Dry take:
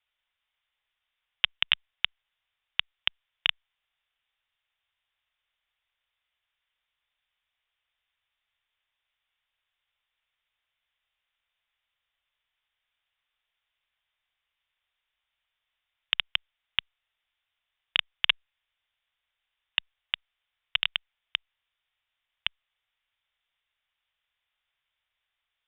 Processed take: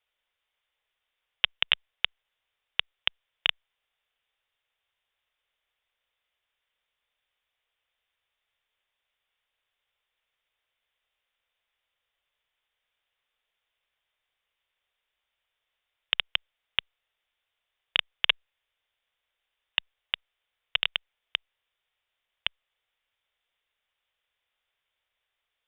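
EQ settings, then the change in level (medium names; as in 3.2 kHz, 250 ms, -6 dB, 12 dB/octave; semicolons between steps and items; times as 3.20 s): peaking EQ 480 Hz +8.5 dB 0.98 oct; 0.0 dB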